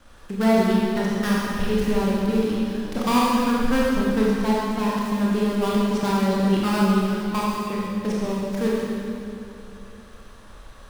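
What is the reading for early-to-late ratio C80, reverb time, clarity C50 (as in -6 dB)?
-1.0 dB, 2.7 s, -2.5 dB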